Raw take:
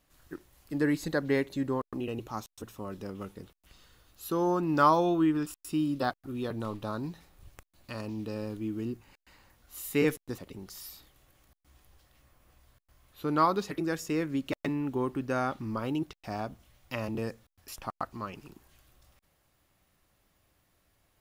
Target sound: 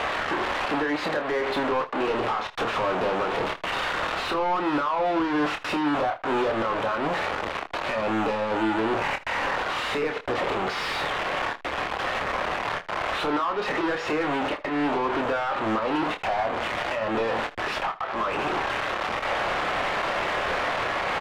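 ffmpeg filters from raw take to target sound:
ffmpeg -i in.wav -filter_complex "[0:a]aeval=exprs='val(0)+0.5*0.0355*sgn(val(0))':channel_layout=same,lowpass=5500,acrossover=split=410 3800:gain=0.126 1 0.0794[link_01][link_02][link_03];[link_01][link_02][link_03]amix=inputs=3:normalize=0,acompressor=threshold=-42dB:ratio=10,alimiter=level_in=15.5dB:limit=-24dB:level=0:latency=1:release=332,volume=-15.5dB,acontrast=55,asplit=2[link_04][link_05];[link_05]highpass=frequency=720:poles=1,volume=34dB,asoftclip=type=tanh:threshold=-15dB[link_06];[link_04][link_06]amix=inputs=2:normalize=0,lowpass=frequency=1200:poles=1,volume=-6dB,aecho=1:1:27|79:0.473|0.133" out.wav

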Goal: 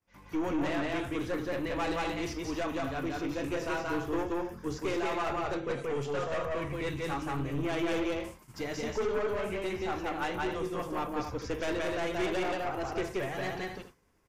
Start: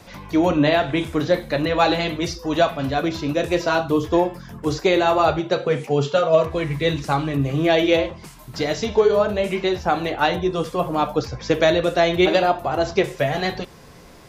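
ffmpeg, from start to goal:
ffmpeg -i in.wav -af "aecho=1:1:177.8|256.6:0.794|0.282,agate=range=-33dB:threshold=-31dB:ratio=3:detection=peak,aeval=exprs='(tanh(6.31*val(0)+0.3)-tanh(0.3))/6.31':channel_layout=same,equalizer=frequency=160:width_type=o:width=0.67:gain=-6,equalizer=frequency=630:width_type=o:width=0.67:gain=-6,equalizer=frequency=4000:width_type=o:width=0.67:gain=-9,volume=-8.5dB" out.wav

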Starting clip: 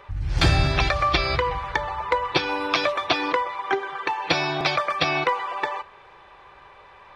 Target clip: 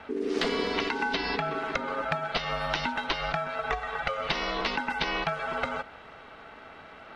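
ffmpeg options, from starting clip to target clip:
ffmpeg -i in.wav -filter_complex "[0:a]aeval=exprs='val(0)*sin(2*PI*340*n/s)':channel_layout=same,acrossover=split=390|5600[link_01][link_02][link_03];[link_01]acompressor=threshold=-42dB:ratio=4[link_04];[link_02]acompressor=threshold=-32dB:ratio=4[link_05];[link_03]acompressor=threshold=-58dB:ratio=4[link_06];[link_04][link_05][link_06]amix=inputs=3:normalize=0,volume=4dB" out.wav

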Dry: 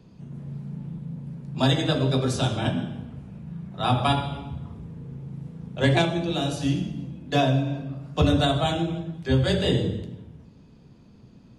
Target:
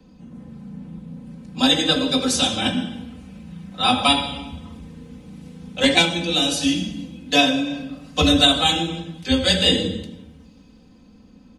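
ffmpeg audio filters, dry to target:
ffmpeg -i in.wav -filter_complex "[0:a]aecho=1:1:3.9:0.97,acrossover=split=180|720|2200[link_01][link_02][link_03][link_04];[link_04]dynaudnorm=framelen=240:gausssize=13:maxgain=11.5dB[link_05];[link_01][link_02][link_03][link_05]amix=inputs=4:normalize=0" out.wav

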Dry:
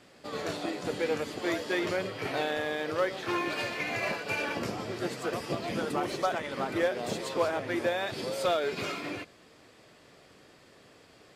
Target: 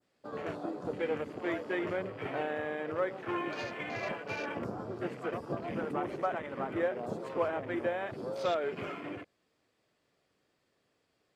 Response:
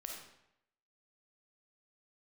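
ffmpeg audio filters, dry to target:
-af "afwtdn=0.0112,adynamicequalizer=threshold=0.00447:dfrequency=2900:dqfactor=0.84:tfrequency=2900:tqfactor=0.84:attack=5:release=100:ratio=0.375:range=2.5:mode=cutabove:tftype=bell,volume=-3dB"

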